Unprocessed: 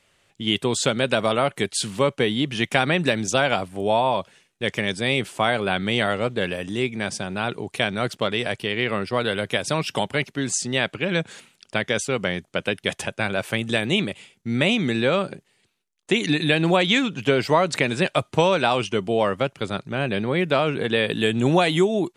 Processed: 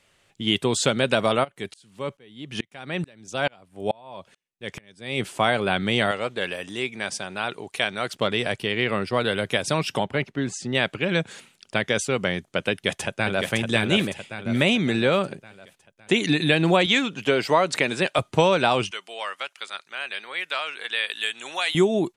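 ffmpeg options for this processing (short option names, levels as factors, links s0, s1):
-filter_complex "[0:a]asplit=3[s0][s1][s2];[s0]afade=t=out:st=1.43:d=0.02[s3];[s1]aeval=exprs='val(0)*pow(10,-35*if(lt(mod(-2.3*n/s,1),2*abs(-2.3)/1000),1-mod(-2.3*n/s,1)/(2*abs(-2.3)/1000),(mod(-2.3*n/s,1)-2*abs(-2.3)/1000)/(1-2*abs(-2.3)/1000))/20)':c=same,afade=t=in:st=1.43:d=0.02,afade=t=out:st=5.19:d=0.02[s4];[s2]afade=t=in:st=5.19:d=0.02[s5];[s3][s4][s5]amix=inputs=3:normalize=0,asettb=1/sr,asplit=3[s6][s7][s8];[s6]atrim=end=6.114[s9];[s7]atrim=start=6.11:end=8.15,asetpts=PTS-STARTPTS,afade=t=in:d=0.004:c=qsin,afade=t=out:st=2.036:d=0.004:c=qsin,lowshelf=f=350:g=-12[s10];[s8]atrim=start=8.146[s11];[s9][s10]acrossfade=d=0.004:c1=hsin:c2=qsin[s12];[s12][s11]acrossfade=d=0.004:c1=qsin:c2=hsin,asettb=1/sr,asplit=3[s13][s14][s15];[s13]atrim=end=9.974[s16];[s14]atrim=start=9.97:end=10.75,asetpts=PTS-STARTPTS,afade=t=in:d=0.004:c=qsin,afade=t=out:st=0.776:d=0.004:c=qsin,lowpass=f=2000:p=1[s17];[s15]atrim=start=10.746[s18];[s16][s17]acrossfade=d=0.004:c1=hsin:c2=qsin[s19];[s19][s18]acrossfade=d=0.004:c1=qsin:c2=hsin,asplit=2[s20][s21];[s21]afade=t=in:st=12.7:d=0.01,afade=t=out:st=13.51:d=0.01,aecho=0:1:560|1120|1680|2240|2800|3360:0.595662|0.297831|0.148916|0.0744578|0.0372289|0.0186144[s22];[s20][s22]amix=inputs=2:normalize=0,asettb=1/sr,asplit=3[s23][s24][s25];[s23]atrim=end=16.864[s26];[s24]atrim=start=16.86:end=18.19,asetpts=PTS-STARTPTS,afade=t=in:d=0.004:c=qsin,afade=t=out:st=1.326:d=0.004:c=qsin,highpass=f=270:p=1[s27];[s25]atrim=start=18.186[s28];[s26][s27]acrossfade=d=0.004:c1=hsin:c2=qsin[s29];[s29][s28]acrossfade=d=0.004:c1=qsin:c2=hsin,asettb=1/sr,asplit=3[s30][s31][s32];[s30]atrim=end=18.914[s33];[s31]atrim=start=18.91:end=21.75,asetpts=PTS-STARTPTS,afade=t=in:d=0.004:c=qsin,afade=t=out:st=2.836:d=0.004:c=qsin,highpass=1400[s34];[s32]atrim=start=21.746[s35];[s33][s34]acrossfade=d=0.004:c1=hsin:c2=qsin[s36];[s36][s35]acrossfade=d=0.004:c1=qsin:c2=hsin"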